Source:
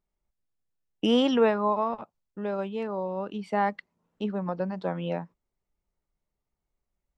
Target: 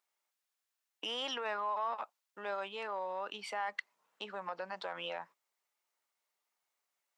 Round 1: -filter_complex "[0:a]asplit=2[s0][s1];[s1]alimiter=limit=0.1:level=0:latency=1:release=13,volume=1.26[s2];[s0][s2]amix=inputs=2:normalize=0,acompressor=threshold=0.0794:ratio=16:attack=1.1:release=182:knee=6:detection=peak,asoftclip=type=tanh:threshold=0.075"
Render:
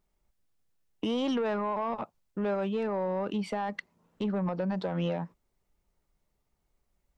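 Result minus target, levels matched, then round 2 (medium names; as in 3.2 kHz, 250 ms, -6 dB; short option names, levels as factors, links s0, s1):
1 kHz band -5.0 dB
-filter_complex "[0:a]asplit=2[s0][s1];[s1]alimiter=limit=0.1:level=0:latency=1:release=13,volume=1.26[s2];[s0][s2]amix=inputs=2:normalize=0,acompressor=threshold=0.0794:ratio=16:attack=1.1:release=182:knee=6:detection=peak,highpass=1000,asoftclip=type=tanh:threshold=0.075"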